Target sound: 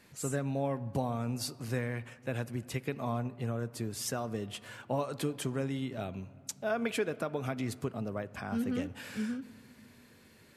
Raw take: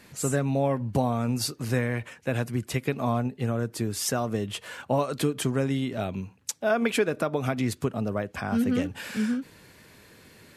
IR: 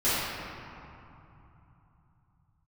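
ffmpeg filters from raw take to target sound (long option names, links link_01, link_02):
-filter_complex "[0:a]asplit=2[link_01][link_02];[1:a]atrim=start_sample=2205,highshelf=frequency=4900:gain=-6[link_03];[link_02][link_03]afir=irnorm=-1:irlink=0,volume=-31.5dB[link_04];[link_01][link_04]amix=inputs=2:normalize=0,volume=-8dB"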